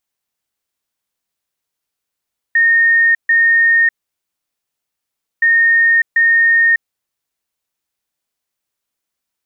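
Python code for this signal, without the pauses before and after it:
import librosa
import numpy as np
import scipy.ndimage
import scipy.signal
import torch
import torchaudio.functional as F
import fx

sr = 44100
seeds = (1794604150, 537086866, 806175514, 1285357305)

y = fx.beep_pattern(sr, wave='sine', hz=1840.0, on_s=0.6, off_s=0.14, beeps=2, pause_s=1.53, groups=2, level_db=-8.0)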